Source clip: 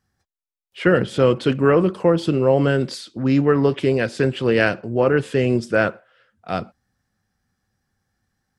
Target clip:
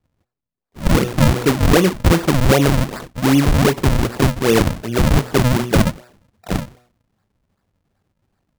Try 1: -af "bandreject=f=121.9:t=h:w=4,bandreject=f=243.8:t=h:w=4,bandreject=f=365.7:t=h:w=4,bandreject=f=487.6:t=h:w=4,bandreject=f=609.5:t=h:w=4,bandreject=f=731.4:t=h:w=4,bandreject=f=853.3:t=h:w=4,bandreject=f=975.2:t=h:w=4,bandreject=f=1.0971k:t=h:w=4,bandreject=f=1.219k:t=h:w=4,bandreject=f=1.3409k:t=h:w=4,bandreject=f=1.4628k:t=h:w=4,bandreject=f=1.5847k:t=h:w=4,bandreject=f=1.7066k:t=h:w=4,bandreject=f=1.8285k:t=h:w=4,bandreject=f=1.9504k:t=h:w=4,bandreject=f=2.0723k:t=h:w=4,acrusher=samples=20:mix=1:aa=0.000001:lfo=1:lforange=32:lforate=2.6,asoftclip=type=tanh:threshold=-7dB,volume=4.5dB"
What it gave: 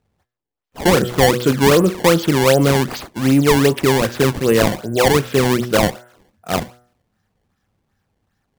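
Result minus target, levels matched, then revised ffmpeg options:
decimation with a swept rate: distortion -12 dB
-af "bandreject=f=121.9:t=h:w=4,bandreject=f=243.8:t=h:w=4,bandreject=f=365.7:t=h:w=4,bandreject=f=487.6:t=h:w=4,bandreject=f=609.5:t=h:w=4,bandreject=f=731.4:t=h:w=4,bandreject=f=853.3:t=h:w=4,bandreject=f=975.2:t=h:w=4,bandreject=f=1.0971k:t=h:w=4,bandreject=f=1.219k:t=h:w=4,bandreject=f=1.3409k:t=h:w=4,bandreject=f=1.4628k:t=h:w=4,bandreject=f=1.5847k:t=h:w=4,bandreject=f=1.7066k:t=h:w=4,bandreject=f=1.8285k:t=h:w=4,bandreject=f=1.9504k:t=h:w=4,bandreject=f=2.0723k:t=h:w=4,acrusher=samples=67:mix=1:aa=0.000001:lfo=1:lforange=107:lforate=2.6,asoftclip=type=tanh:threshold=-7dB,volume=4.5dB"

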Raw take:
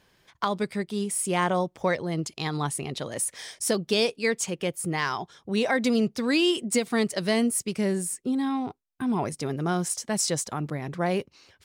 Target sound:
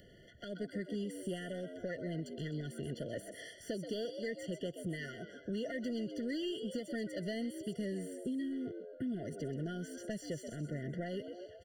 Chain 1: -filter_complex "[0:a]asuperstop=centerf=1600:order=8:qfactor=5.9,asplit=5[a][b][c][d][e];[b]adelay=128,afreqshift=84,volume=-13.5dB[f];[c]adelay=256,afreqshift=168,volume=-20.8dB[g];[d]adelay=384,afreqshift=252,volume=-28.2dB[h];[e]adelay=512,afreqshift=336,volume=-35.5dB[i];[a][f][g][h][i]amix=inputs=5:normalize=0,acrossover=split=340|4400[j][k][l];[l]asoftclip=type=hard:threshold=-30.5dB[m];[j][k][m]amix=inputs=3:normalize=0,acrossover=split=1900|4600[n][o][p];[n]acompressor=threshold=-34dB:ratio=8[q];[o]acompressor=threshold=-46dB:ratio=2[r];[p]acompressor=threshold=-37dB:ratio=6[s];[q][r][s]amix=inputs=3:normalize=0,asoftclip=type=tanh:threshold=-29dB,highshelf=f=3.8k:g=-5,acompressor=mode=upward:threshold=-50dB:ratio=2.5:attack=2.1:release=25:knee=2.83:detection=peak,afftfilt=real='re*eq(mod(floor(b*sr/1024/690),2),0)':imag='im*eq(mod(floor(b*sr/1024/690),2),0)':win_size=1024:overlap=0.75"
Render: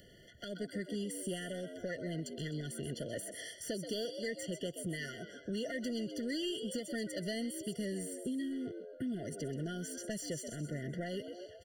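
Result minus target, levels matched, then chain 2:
8000 Hz band +8.5 dB; hard clip: distortion -5 dB
-filter_complex "[0:a]asuperstop=centerf=1600:order=8:qfactor=5.9,asplit=5[a][b][c][d][e];[b]adelay=128,afreqshift=84,volume=-13.5dB[f];[c]adelay=256,afreqshift=168,volume=-20.8dB[g];[d]adelay=384,afreqshift=252,volume=-28.2dB[h];[e]adelay=512,afreqshift=336,volume=-35.5dB[i];[a][f][g][h][i]amix=inputs=5:normalize=0,acrossover=split=340|4400[j][k][l];[l]asoftclip=type=hard:threshold=-38dB[m];[j][k][m]amix=inputs=3:normalize=0,acrossover=split=1900|4600[n][o][p];[n]acompressor=threshold=-34dB:ratio=8[q];[o]acompressor=threshold=-46dB:ratio=2[r];[p]acompressor=threshold=-37dB:ratio=6[s];[q][r][s]amix=inputs=3:normalize=0,asoftclip=type=tanh:threshold=-29dB,highshelf=f=3.8k:g=-15.5,acompressor=mode=upward:threshold=-50dB:ratio=2.5:attack=2.1:release=25:knee=2.83:detection=peak,afftfilt=real='re*eq(mod(floor(b*sr/1024/690),2),0)':imag='im*eq(mod(floor(b*sr/1024/690),2),0)':win_size=1024:overlap=0.75"

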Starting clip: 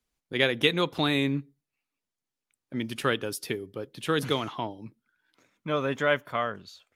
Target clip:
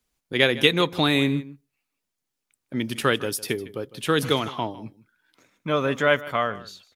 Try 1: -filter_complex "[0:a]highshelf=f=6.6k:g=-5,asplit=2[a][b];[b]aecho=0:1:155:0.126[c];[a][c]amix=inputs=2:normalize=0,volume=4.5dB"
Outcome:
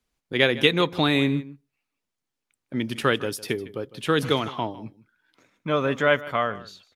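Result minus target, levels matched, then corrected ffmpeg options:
8000 Hz band -5.0 dB
-filter_complex "[0:a]highshelf=f=6.6k:g=3.5,asplit=2[a][b];[b]aecho=0:1:155:0.126[c];[a][c]amix=inputs=2:normalize=0,volume=4.5dB"

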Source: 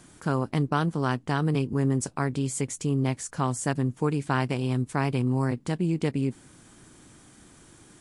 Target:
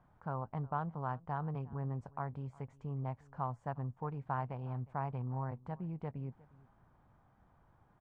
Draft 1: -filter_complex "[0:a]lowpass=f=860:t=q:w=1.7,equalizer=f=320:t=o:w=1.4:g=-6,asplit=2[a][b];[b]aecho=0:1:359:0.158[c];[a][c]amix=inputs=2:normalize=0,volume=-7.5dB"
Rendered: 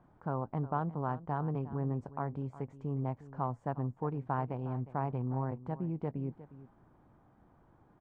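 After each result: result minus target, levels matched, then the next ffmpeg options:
echo-to-direct +6.5 dB; 250 Hz band +2.5 dB
-filter_complex "[0:a]lowpass=f=860:t=q:w=1.7,equalizer=f=320:t=o:w=1.4:g=-6,asplit=2[a][b];[b]aecho=0:1:359:0.075[c];[a][c]amix=inputs=2:normalize=0,volume=-7.5dB"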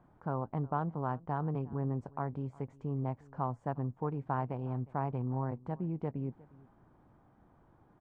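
250 Hz band +2.5 dB
-filter_complex "[0:a]lowpass=f=860:t=q:w=1.7,equalizer=f=320:t=o:w=1.4:g=-17,asplit=2[a][b];[b]aecho=0:1:359:0.075[c];[a][c]amix=inputs=2:normalize=0,volume=-7.5dB"

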